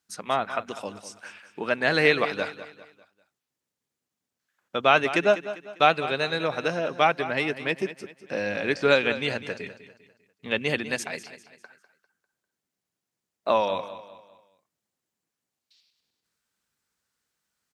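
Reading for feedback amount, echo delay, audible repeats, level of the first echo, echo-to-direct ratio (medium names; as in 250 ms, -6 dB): 40%, 199 ms, 3, -13.5 dB, -13.0 dB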